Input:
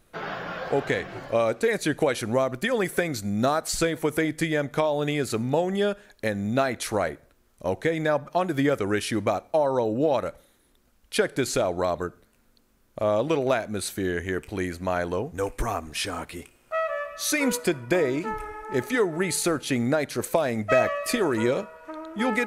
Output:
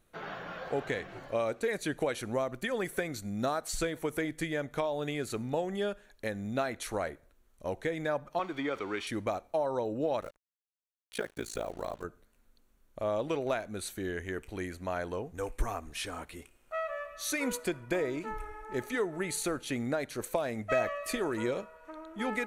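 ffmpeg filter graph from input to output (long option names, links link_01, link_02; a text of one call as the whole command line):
ffmpeg -i in.wav -filter_complex "[0:a]asettb=1/sr,asplit=3[link_01][link_02][link_03];[link_01]atrim=end=8.394[link_04];[link_02]atrim=start=8.39:end=9.07,asetpts=PTS-STARTPTS,afade=type=in:duration=0.004:curve=qsin,afade=type=out:start_time=0.676:duration=0.004:curve=qsin,aeval=exprs='val(0)+0.5*0.0211*sgn(val(0))':channel_layout=same,acrossover=split=270 5300:gain=0.158 1 0.0794[link_05][link_06][link_07];[link_05][link_06][link_07]amix=inputs=3:normalize=0,aecho=1:1:0.9:0.4,atrim=end_sample=29988[link_08];[link_03]atrim=start=9.066[link_09];[link_04][link_08]acrossfade=duration=0.004:curve1=hsin:curve2=qsin[link_10];[link_10][link_09]acrossfade=duration=0.004:curve1=qsin:curve2=hsin,asettb=1/sr,asplit=3[link_11][link_12][link_13];[link_11]atrim=end=10.214[link_14];[link_12]atrim=start=10.21:end=12.04,asetpts=PTS-STARTPTS,afade=type=in:duration=0.004:curve=qsin,afade=type=out:start_time=1.826:duration=0.004:curve=qsin,acrusher=bits=6:mix=0:aa=0.5,aeval=exprs='sgn(val(0))*max(abs(val(0))-0.00422,0)':channel_layout=same,tremolo=f=55:d=0.974[link_15];[link_13]atrim=start=12.036[link_16];[link_14][link_15]acrossfade=duration=0.004:curve1=hsin:curve2=qsin[link_17];[link_17][link_16]acrossfade=duration=0.004:curve1=qsin:curve2=hsin,bandreject=frequency=5000:width=10,asubboost=boost=2.5:cutoff=63,volume=-8dB" out.wav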